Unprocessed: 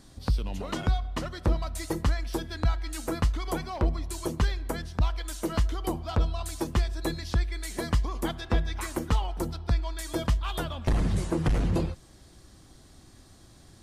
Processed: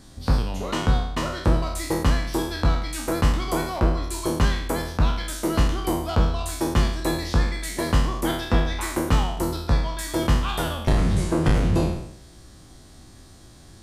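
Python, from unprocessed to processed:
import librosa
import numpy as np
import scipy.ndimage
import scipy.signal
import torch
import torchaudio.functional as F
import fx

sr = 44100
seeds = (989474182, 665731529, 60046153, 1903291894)

y = fx.spec_trails(x, sr, decay_s=0.74)
y = F.gain(torch.from_numpy(y), 3.5).numpy()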